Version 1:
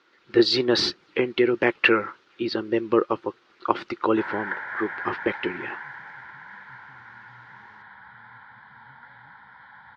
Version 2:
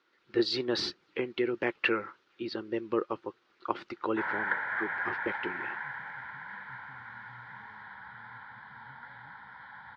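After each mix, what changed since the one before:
speech -9.5 dB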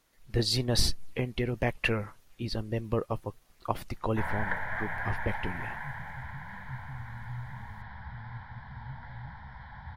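master: remove cabinet simulation 330–4400 Hz, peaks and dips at 350 Hz +10 dB, 670 Hz -9 dB, 1.4 kHz +8 dB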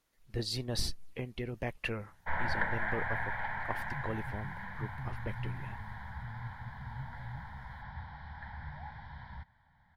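speech -8.0 dB; background: entry -1.90 s

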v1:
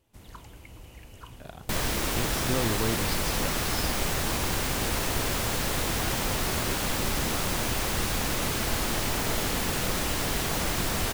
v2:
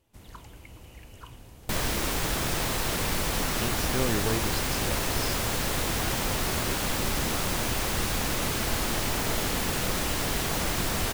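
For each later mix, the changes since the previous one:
speech: entry +1.45 s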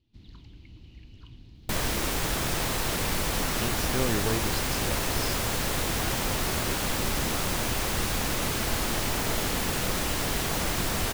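first sound: add FFT filter 310 Hz 0 dB, 520 Hz -17 dB, 1.4 kHz -15 dB, 4.2 kHz +1 dB, 8.6 kHz -26 dB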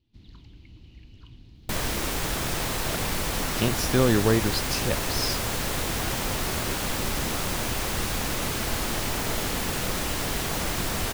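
speech +8.5 dB

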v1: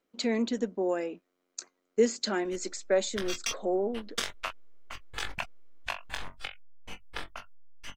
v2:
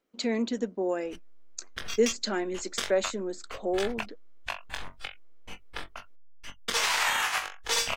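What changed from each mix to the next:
background: entry -1.40 s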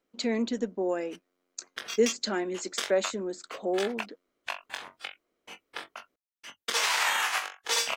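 background: add high-pass 310 Hz 12 dB/octave

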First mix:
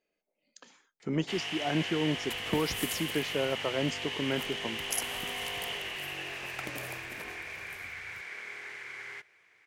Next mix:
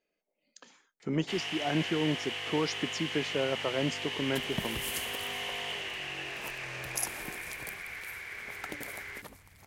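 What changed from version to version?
second sound: entry +2.05 s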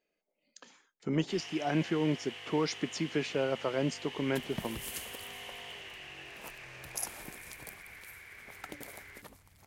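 first sound -9.0 dB; second sound -3.5 dB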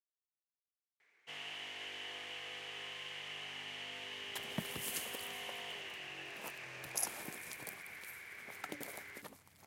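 speech: muted; master: add high-pass 140 Hz 12 dB/octave

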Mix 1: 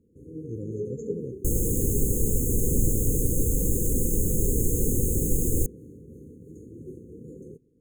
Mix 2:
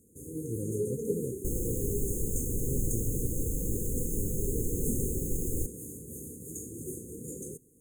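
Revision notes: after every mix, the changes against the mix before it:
first sound: remove distance through air 310 m; second sound -8.0 dB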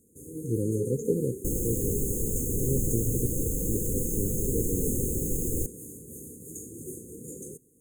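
speech +8.5 dB; second sound +5.0 dB; master: add bass shelf 100 Hz -5 dB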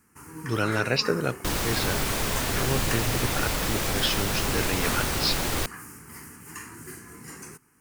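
first sound: add static phaser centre 1.5 kHz, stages 4; master: remove brick-wall FIR band-stop 530–6300 Hz

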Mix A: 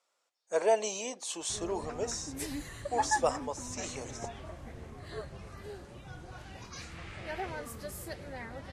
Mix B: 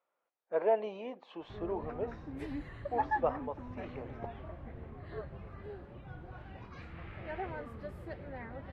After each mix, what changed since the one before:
speech: add distance through air 220 m; master: add distance through air 500 m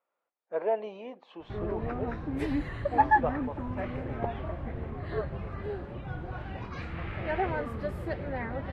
background +10.0 dB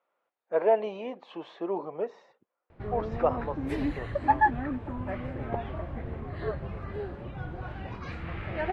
speech +5.5 dB; background: entry +1.30 s

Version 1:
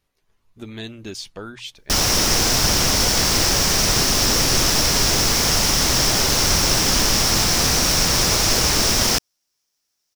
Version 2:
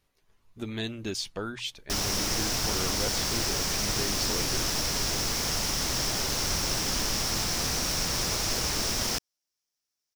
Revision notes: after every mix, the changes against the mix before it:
background -11.0 dB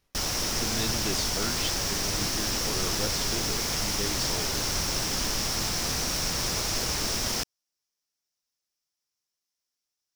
background: entry -1.75 s

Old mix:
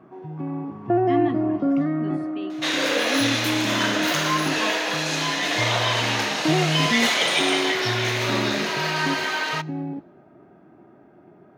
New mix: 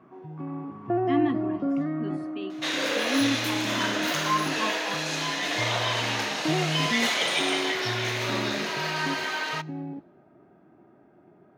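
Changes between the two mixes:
first sound -5.5 dB; second sound -4.5 dB

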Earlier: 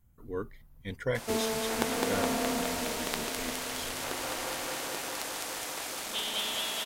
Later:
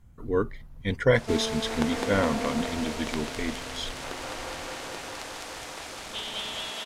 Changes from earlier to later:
speech +10.5 dB; master: add distance through air 54 m

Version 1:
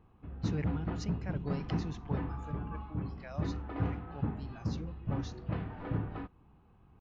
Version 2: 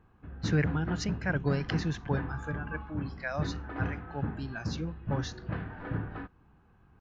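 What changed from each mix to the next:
speech +9.0 dB; master: add peaking EQ 1.6 kHz +10.5 dB 0.38 oct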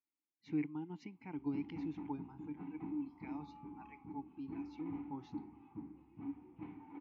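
background: entry +1.10 s; master: add vowel filter u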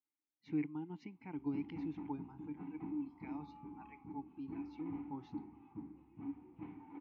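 master: add distance through air 86 m

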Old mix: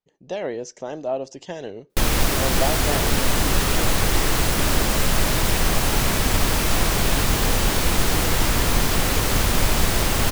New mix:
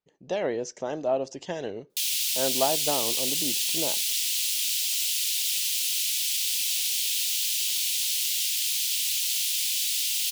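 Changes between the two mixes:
background: add steep high-pass 2.8 kHz 36 dB/octave; master: add bass shelf 67 Hz -7.5 dB

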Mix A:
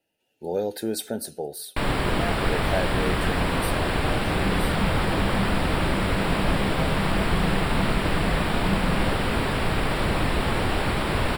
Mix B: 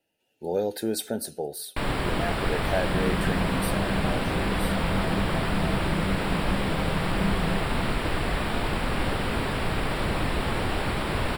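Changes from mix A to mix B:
first sound -3.0 dB; second sound: entry -1.45 s

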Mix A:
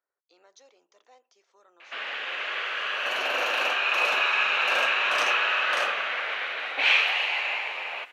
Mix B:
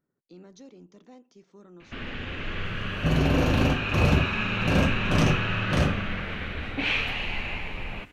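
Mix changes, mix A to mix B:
first sound -6.0 dB; master: remove high-pass 580 Hz 24 dB/octave

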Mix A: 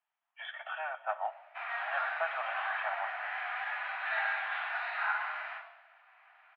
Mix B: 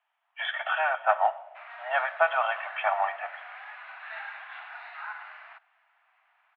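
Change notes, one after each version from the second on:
speech +11.5 dB; background: send off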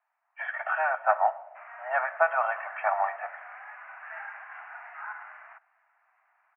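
master: add Butterworth band-stop 3.8 kHz, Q 0.81

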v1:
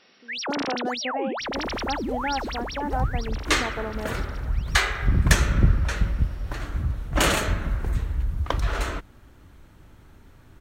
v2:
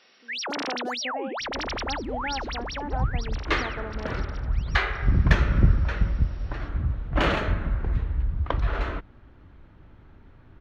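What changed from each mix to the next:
speech -5.0 dB; first sound: add high-pass 430 Hz 6 dB/octave; second sound: add distance through air 290 m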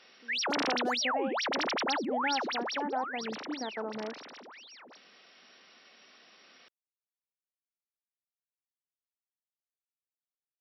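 second sound: muted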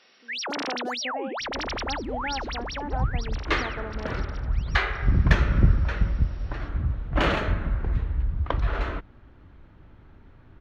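second sound: unmuted

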